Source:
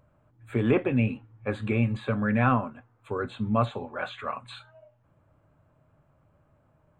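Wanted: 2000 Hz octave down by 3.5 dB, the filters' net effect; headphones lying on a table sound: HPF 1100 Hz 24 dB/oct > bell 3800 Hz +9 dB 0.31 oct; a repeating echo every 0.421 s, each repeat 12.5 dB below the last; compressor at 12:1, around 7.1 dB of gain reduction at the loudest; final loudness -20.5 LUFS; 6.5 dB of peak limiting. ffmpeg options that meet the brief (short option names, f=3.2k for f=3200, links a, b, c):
-af "equalizer=f=2k:t=o:g=-5,acompressor=threshold=-25dB:ratio=12,alimiter=limit=-23dB:level=0:latency=1,highpass=f=1.1k:w=0.5412,highpass=f=1.1k:w=1.3066,equalizer=f=3.8k:t=o:w=0.31:g=9,aecho=1:1:421|842|1263:0.237|0.0569|0.0137,volume=23dB"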